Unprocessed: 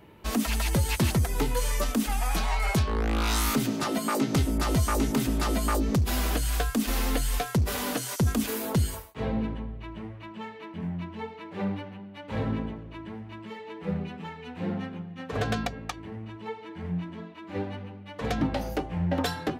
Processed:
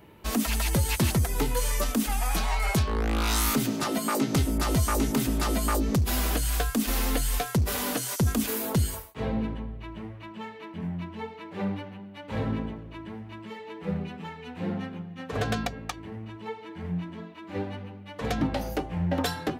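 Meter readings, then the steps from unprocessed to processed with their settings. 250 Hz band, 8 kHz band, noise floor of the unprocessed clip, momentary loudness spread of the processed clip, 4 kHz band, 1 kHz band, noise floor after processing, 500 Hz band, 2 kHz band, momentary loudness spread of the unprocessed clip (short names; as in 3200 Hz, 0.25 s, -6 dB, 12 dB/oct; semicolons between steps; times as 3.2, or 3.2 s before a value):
0.0 dB, +2.5 dB, -44 dBFS, 15 LU, +1.0 dB, 0.0 dB, -44 dBFS, 0.0 dB, 0.0 dB, 14 LU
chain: high shelf 8100 Hz +5 dB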